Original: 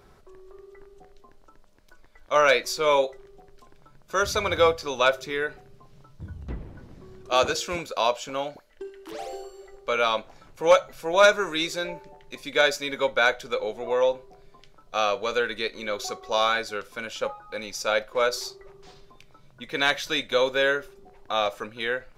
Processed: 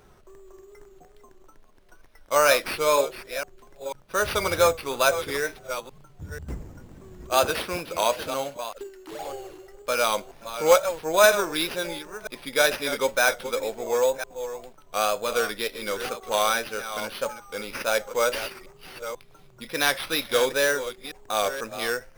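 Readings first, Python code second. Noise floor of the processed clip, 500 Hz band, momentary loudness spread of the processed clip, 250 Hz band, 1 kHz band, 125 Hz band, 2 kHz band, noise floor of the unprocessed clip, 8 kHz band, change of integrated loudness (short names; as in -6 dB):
-53 dBFS, 0.0 dB, 17 LU, +0.5 dB, 0.0 dB, +0.5 dB, 0.0 dB, -54 dBFS, +6.5 dB, 0.0 dB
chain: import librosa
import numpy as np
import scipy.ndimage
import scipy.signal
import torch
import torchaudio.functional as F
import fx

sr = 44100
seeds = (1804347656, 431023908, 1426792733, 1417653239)

y = fx.reverse_delay(x, sr, ms=491, wet_db=-11.0)
y = fx.sample_hold(y, sr, seeds[0], rate_hz=7300.0, jitter_pct=0)
y = fx.wow_flutter(y, sr, seeds[1], rate_hz=2.1, depth_cents=69.0)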